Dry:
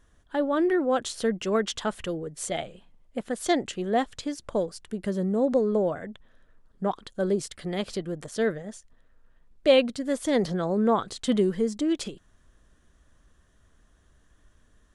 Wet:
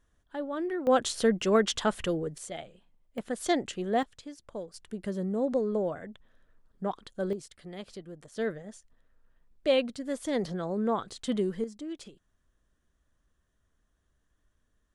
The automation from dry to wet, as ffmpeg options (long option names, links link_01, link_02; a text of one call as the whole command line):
ffmpeg -i in.wav -af "asetnsamples=nb_out_samples=441:pad=0,asendcmd='0.87 volume volume 1.5dB;2.38 volume volume -9dB;3.18 volume volume -3dB;4.03 volume volume -12dB;4.74 volume volume -5dB;7.33 volume volume -12dB;8.37 volume volume -6dB;11.64 volume volume -13dB',volume=-9dB" out.wav